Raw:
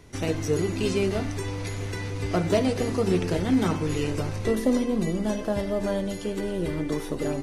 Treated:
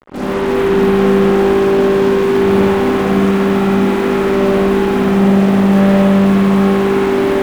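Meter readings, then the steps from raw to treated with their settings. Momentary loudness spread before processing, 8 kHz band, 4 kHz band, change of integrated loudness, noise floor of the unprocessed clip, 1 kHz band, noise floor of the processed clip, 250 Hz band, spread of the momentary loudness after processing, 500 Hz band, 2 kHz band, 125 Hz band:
8 LU, no reading, +10.0 dB, +14.5 dB, -34 dBFS, +17.5 dB, -17 dBFS, +15.0 dB, 3 LU, +15.5 dB, +14.5 dB, +11.5 dB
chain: vocoder on a held chord major triad, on G3; steep low-pass 820 Hz 36 dB/octave; hum notches 50/100/150/200/250/300/350/400 Hz; dynamic bell 590 Hz, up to -7 dB, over -45 dBFS, Q 2.6; compression, threshold -30 dBFS, peak gain reduction 12 dB; fuzz box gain 56 dB, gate -54 dBFS; spring tank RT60 1.9 s, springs 56 ms, chirp 55 ms, DRR -8.5 dB; bit-crushed delay 283 ms, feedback 80%, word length 5-bit, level -8 dB; trim -9.5 dB

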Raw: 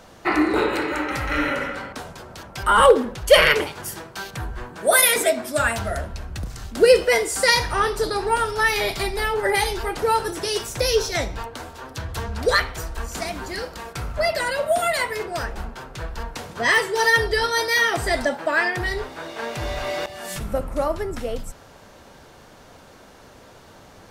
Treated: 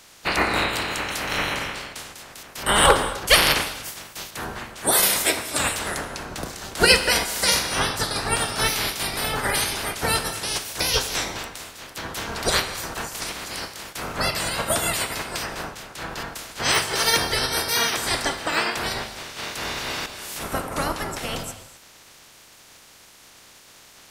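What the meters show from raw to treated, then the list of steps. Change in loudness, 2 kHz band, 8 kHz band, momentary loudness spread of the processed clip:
-1.5 dB, -2.5 dB, +4.0 dB, 16 LU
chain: spectral peaks clipped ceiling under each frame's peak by 25 dB; gated-style reverb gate 280 ms flat, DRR 10.5 dB; trim -2.5 dB

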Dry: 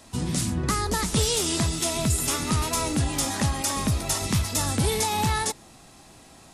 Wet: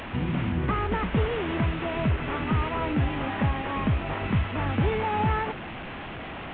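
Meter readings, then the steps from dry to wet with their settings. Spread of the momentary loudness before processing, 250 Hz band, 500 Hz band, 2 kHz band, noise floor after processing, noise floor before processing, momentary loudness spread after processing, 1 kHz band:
3 LU, 0.0 dB, +0.5 dB, +1.5 dB, -37 dBFS, -51 dBFS, 10 LU, 0.0 dB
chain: one-bit delta coder 16 kbps, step -30.5 dBFS

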